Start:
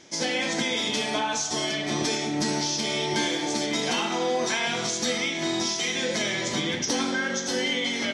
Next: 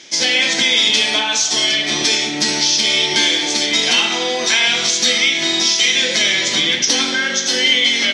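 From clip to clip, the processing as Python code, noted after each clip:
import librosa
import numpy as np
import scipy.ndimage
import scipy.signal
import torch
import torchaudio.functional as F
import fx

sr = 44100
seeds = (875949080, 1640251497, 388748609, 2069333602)

y = fx.weighting(x, sr, curve='D')
y = F.gain(torch.from_numpy(y), 4.0).numpy()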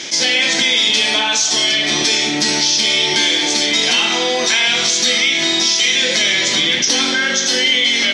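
y = fx.env_flatten(x, sr, amount_pct=50)
y = F.gain(torch.from_numpy(y), -1.5).numpy()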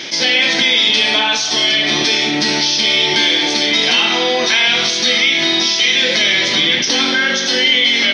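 y = scipy.signal.savgol_filter(x, 15, 4, mode='constant')
y = F.gain(torch.from_numpy(y), 2.0).numpy()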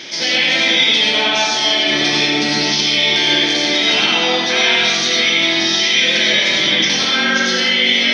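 y = fx.rev_freeverb(x, sr, rt60_s=1.1, hf_ratio=0.45, predelay_ms=55, drr_db=-3.5)
y = F.gain(torch.from_numpy(y), -5.0).numpy()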